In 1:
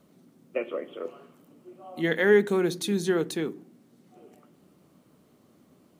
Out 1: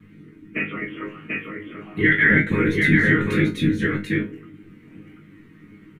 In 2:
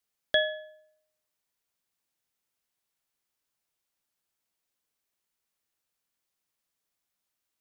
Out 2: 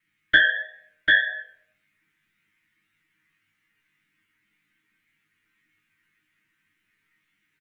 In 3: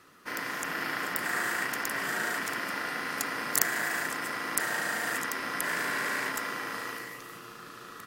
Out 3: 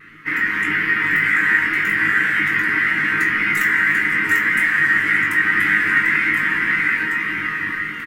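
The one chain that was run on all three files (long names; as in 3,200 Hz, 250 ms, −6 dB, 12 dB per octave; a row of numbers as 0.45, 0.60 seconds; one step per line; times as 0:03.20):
drawn EQ curve 280 Hz 0 dB, 550 Hz −26 dB, 2,000 Hz +13 dB, 4,700 Hz −13 dB
random phases in short frames
on a send: single-tap delay 740 ms −4 dB
on the sum: downward compressor 1.5 to 1, threshold −31 dBFS
double-tracking delay 21 ms −6.5 dB
pitch vibrato 1.8 Hz 33 cents
parametric band 240 Hz +8.5 dB 2.4 octaves
resonators tuned to a chord G#2 fifth, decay 0.22 s
normalise the peak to −3 dBFS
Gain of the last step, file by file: +17.0, +21.0, +19.0 decibels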